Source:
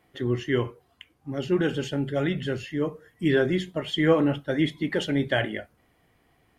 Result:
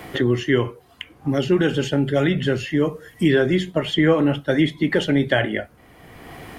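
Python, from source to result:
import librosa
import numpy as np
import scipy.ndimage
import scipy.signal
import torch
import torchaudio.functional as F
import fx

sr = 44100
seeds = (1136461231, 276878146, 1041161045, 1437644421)

y = fx.band_squash(x, sr, depth_pct=70)
y = y * librosa.db_to_amplitude(6.0)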